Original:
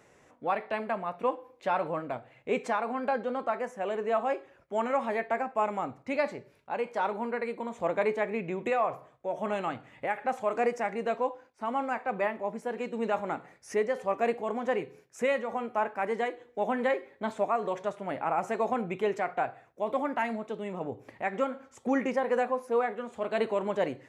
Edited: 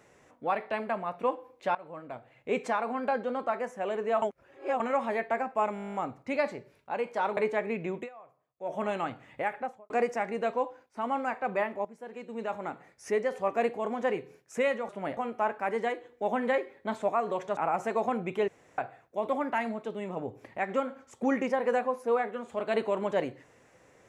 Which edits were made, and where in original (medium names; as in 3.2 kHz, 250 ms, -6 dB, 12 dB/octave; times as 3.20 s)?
1.75–2.58 s: fade in, from -20.5 dB
4.22–4.80 s: reverse
5.74 s: stutter 0.02 s, 11 plays
7.17–8.01 s: delete
8.60–9.34 s: dip -22.5 dB, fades 0.13 s
10.10–10.54 s: studio fade out
12.49–13.89 s: fade in, from -13 dB
17.93–18.21 s: move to 15.53 s
19.12–19.42 s: room tone